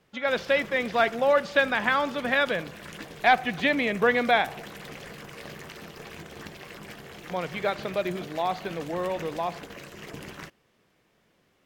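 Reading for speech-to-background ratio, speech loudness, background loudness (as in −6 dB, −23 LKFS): 16.0 dB, −26.0 LKFS, −42.0 LKFS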